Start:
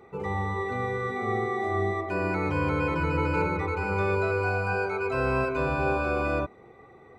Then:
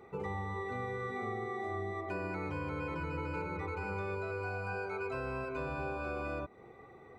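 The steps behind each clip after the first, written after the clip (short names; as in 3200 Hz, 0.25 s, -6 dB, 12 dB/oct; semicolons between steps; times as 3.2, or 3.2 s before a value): compressor 6:1, threshold -32 dBFS, peak gain reduction 10.5 dB; gain -3 dB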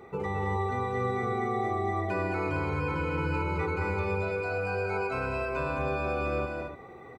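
loudspeakers at several distances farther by 75 m -4 dB, 100 m -9 dB; gain +6 dB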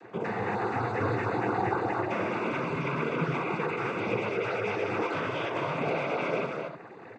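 noise vocoder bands 16; gain +1.5 dB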